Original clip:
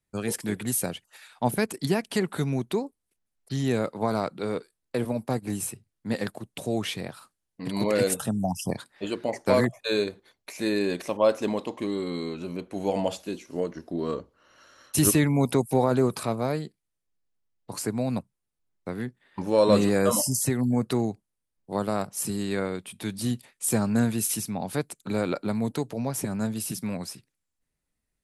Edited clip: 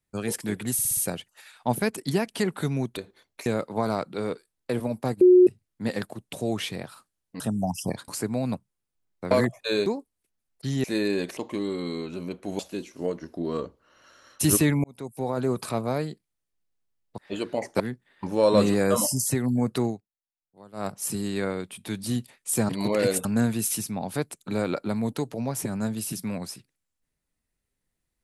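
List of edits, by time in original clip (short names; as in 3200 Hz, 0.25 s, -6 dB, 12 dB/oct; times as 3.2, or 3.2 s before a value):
0.73 stutter 0.06 s, 5 plays
2.73–3.71 swap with 10.06–10.55
5.46–5.72 bleep 363 Hz -10.5 dBFS
7.65–8.21 move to 23.84
8.89–9.51 swap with 17.72–18.95
11.08–11.65 cut
12.87–13.13 cut
15.38–16.31 fade in
21.01–22.03 dip -21 dB, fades 0.15 s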